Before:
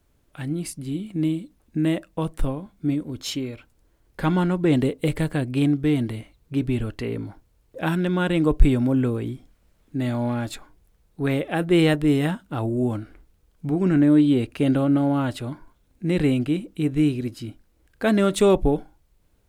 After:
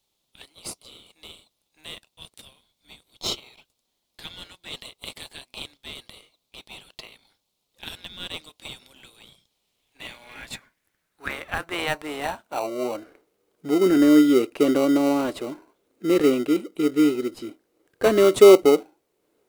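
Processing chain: high-pass sweep 3.6 kHz -> 390 Hz, 9.51–13.48 s; in parallel at -6 dB: sample-rate reducer 1.7 kHz, jitter 0%; on the sum: trim -2.5 dB

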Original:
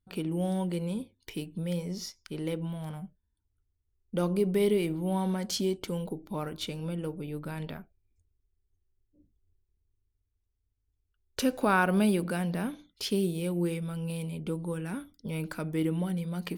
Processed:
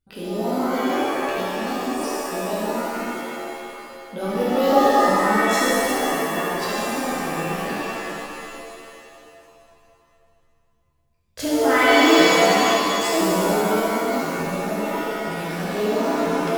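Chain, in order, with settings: sawtooth pitch modulation +9 st, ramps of 1016 ms; hum notches 50/100/150/200 Hz; pitch-shifted reverb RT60 2.5 s, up +7 st, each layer -2 dB, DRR -7.5 dB

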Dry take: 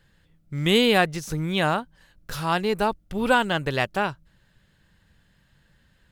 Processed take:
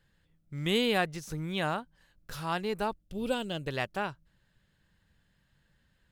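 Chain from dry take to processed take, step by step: 3.02–3.68 s: high-order bell 1.3 kHz -11 dB; trim -8.5 dB

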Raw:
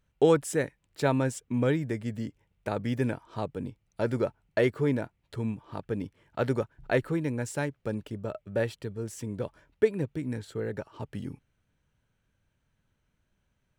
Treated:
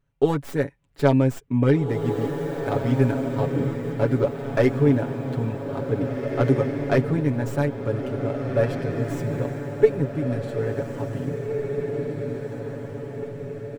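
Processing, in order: tracing distortion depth 0.12 ms; comb 7.2 ms, depth 76%; on a send: echo that smears into a reverb 1952 ms, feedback 50%, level -5.5 dB; on the sum: level rider gain up to 4.5 dB; treble shelf 2 kHz -9 dB

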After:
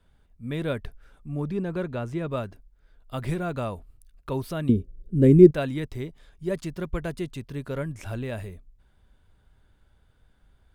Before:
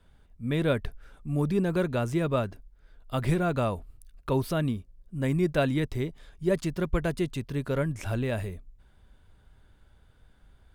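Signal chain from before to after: 1.28–2.31 s: low-pass 3.3 kHz 6 dB/octave; 4.69–5.51 s: resonant low shelf 600 Hz +12 dB, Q 3; trim -3 dB

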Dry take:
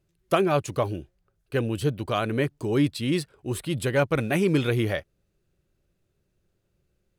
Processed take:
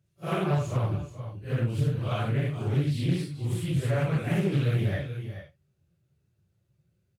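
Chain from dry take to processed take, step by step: phase randomisation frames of 200 ms; high-pass 78 Hz 24 dB/octave; resonant low shelf 200 Hz +9 dB, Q 1.5; delay 431 ms -14 dB; compression 1.5:1, threshold -25 dBFS, peak gain reduction 5 dB; loudspeaker Doppler distortion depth 0.34 ms; trim -3.5 dB

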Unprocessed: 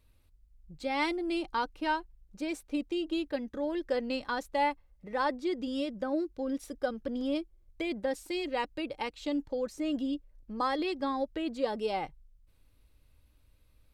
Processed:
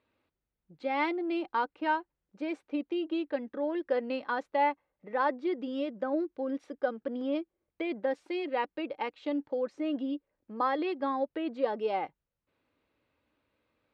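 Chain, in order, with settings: band-pass 270–2300 Hz; trim +2 dB

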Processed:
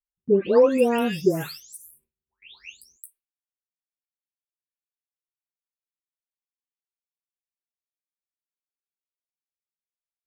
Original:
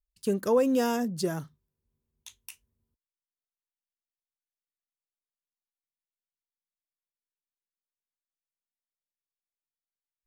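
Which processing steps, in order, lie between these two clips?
delay that grows with frequency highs late, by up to 551 ms; fifteen-band graphic EQ 400 Hz +8 dB, 2.5 kHz +10 dB, 6.3 kHz -7 dB; gate with hold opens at -52 dBFS; trim +4 dB

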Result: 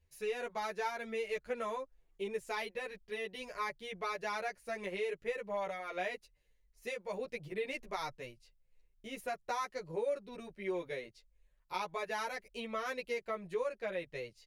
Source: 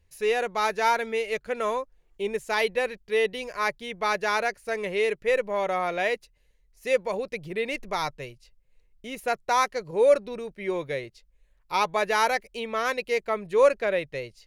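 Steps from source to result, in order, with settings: compression 6:1, threshold -26 dBFS, peak gain reduction 12 dB; endless flanger 10 ms -1.9 Hz; trim -5 dB

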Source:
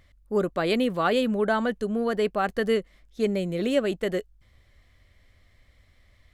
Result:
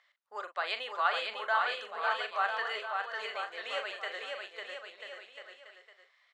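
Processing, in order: high-pass 820 Hz 24 dB/octave; distance through air 120 m; band-stop 2.3 kHz, Q 24; doubling 41 ms -9.5 dB; bouncing-ball echo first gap 550 ms, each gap 0.8×, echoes 5; trim -1.5 dB

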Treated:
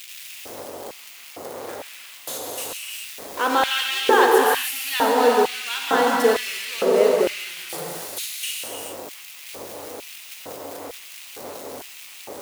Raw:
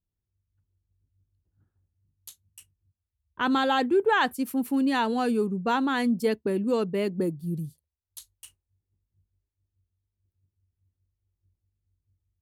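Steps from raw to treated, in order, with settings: jump at every zero crossing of -27 dBFS; bass shelf 320 Hz +2.5 dB; short-mantissa float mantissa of 2-bit; gated-style reverb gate 450 ms flat, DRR -2.5 dB; LFO high-pass square 1.1 Hz 520–2500 Hz

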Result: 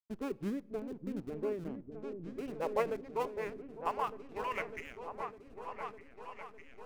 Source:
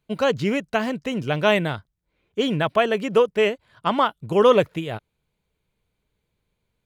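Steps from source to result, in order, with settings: dynamic bell 2.9 kHz, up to +6 dB, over -40 dBFS, Q 2.6; band-pass sweep 370 Hz -> 2.7 kHz, 1.61–5.08 s; in parallel at -10.5 dB: Schmitt trigger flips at -30 dBFS; on the sum: vibrato 1 Hz 18 cents; formant shift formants -3 st; hysteresis with a dead band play -40 dBFS; delay with an opening low-pass 604 ms, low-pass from 400 Hz, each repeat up 2 oct, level -6 dB; on a send at -23 dB: reverberation RT60 0.95 s, pre-delay 16 ms; on the sum: random flutter of the level, depth 60%; trim -6.5 dB

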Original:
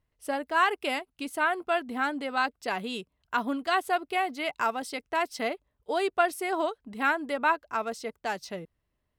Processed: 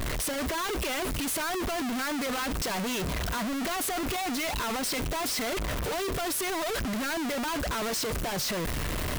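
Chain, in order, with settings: one-bit comparator; band-stop 830 Hz, Q 12

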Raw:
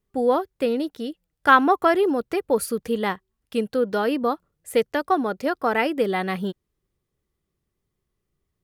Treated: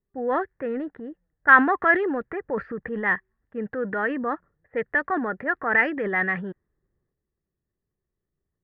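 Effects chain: transient shaper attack -3 dB, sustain +8 dB; resonant low-pass 1.8 kHz, resonance Q 9.4; level-controlled noise filter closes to 710 Hz, open at -8.5 dBFS; trim -6 dB

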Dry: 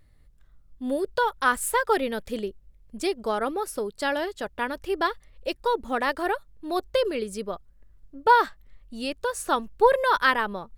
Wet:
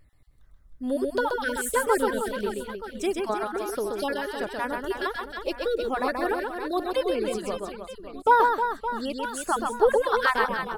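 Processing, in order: random holes in the spectrogram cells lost 29%; reverse bouncing-ball echo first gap 130 ms, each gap 1.4×, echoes 5; dynamic bell 2.9 kHz, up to -5 dB, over -36 dBFS, Q 0.7

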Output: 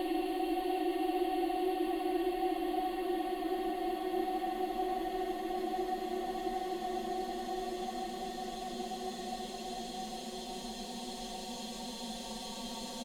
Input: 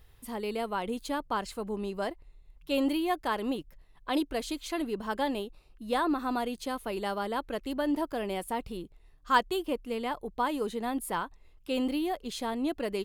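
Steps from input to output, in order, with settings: comb 5.5 ms, depth 87%; Paulstretch 50×, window 0.50 s, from 12.06 s; trim -6.5 dB

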